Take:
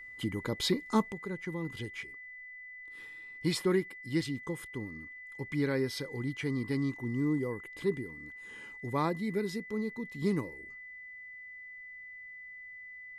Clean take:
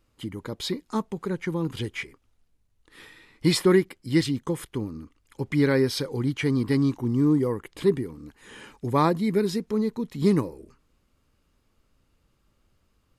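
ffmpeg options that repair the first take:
-af "bandreject=f=2000:w=30,asetnsamples=n=441:p=0,asendcmd='1.12 volume volume 9.5dB',volume=1"

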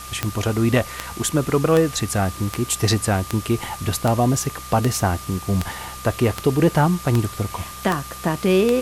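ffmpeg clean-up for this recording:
-af "adeclick=t=4,bandreject=f=63.6:t=h:w=4,bandreject=f=127.2:t=h:w=4,bandreject=f=190.8:t=h:w=4,bandreject=f=1200:w=30,afwtdn=0.014"

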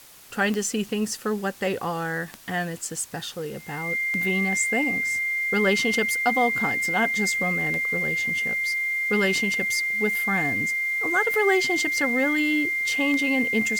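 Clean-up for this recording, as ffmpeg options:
-af "adeclick=t=4,bandreject=f=2100:w=30,afwtdn=0.004"

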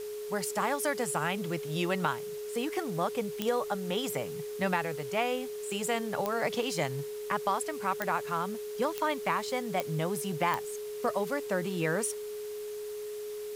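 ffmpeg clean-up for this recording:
-af "adeclick=t=4,bandreject=f=420:w=30,afwtdn=0.0032"

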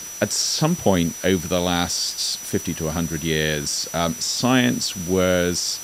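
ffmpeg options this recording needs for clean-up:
-af "bandreject=f=5900:w=30,afwtdn=0.013"

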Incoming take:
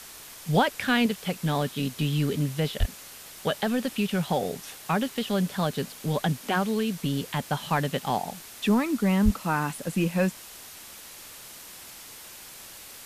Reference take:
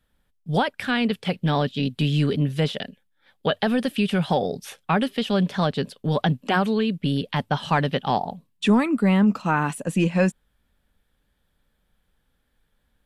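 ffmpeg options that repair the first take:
-filter_complex "[0:a]asplit=3[s0][s1][s2];[s0]afade=t=out:st=2.79:d=0.02[s3];[s1]highpass=f=140:w=0.5412,highpass=f=140:w=1.3066,afade=t=in:st=2.79:d=0.02,afade=t=out:st=2.91:d=0.02[s4];[s2]afade=t=in:st=2.91:d=0.02[s5];[s3][s4][s5]amix=inputs=3:normalize=0,asplit=3[s6][s7][s8];[s6]afade=t=out:st=9.24:d=0.02[s9];[s7]highpass=f=140:w=0.5412,highpass=f=140:w=1.3066,afade=t=in:st=9.24:d=0.02,afade=t=out:st=9.36:d=0.02[s10];[s8]afade=t=in:st=9.36:d=0.02[s11];[s9][s10][s11]amix=inputs=3:normalize=0,afwtdn=0.0071,asetnsamples=n=441:p=0,asendcmd='1.06 volume volume 4.5dB',volume=1"

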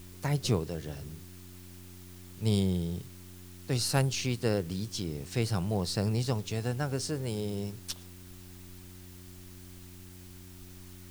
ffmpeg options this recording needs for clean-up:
-af "bandreject=f=90.8:t=h:w=4,bandreject=f=181.6:t=h:w=4,bandreject=f=272.4:t=h:w=4,bandreject=f=363.2:t=h:w=4,afftdn=nr=28:nf=-49"

